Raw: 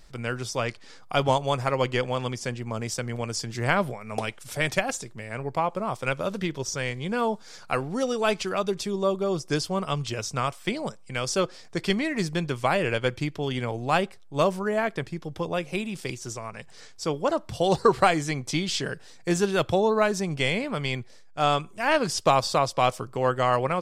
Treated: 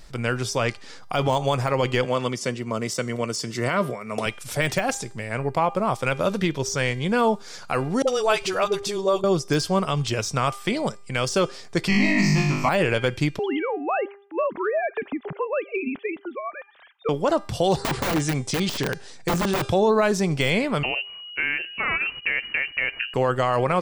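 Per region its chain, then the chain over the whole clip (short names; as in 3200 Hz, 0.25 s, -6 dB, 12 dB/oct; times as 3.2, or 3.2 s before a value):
2.05–4.26 HPF 140 Hz + notch comb 820 Hz
8.02–9.24 bell 220 Hz -14.5 dB 0.62 oct + dispersion highs, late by 54 ms, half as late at 440 Hz
11.88–12.69 fixed phaser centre 2300 Hz, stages 8 + flutter echo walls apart 3.4 m, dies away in 0.81 s
13.39–17.09 sine-wave speech + compressor 4:1, threshold -27 dBFS
17.78–19.68 brick-wall FIR low-pass 11000 Hz + wrapped overs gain 19.5 dB
20.83–23.14 compressor, threshold -26 dBFS + inverted band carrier 2900 Hz
whole clip: de-hum 400.5 Hz, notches 24; de-esser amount 65%; limiter -17 dBFS; gain +6 dB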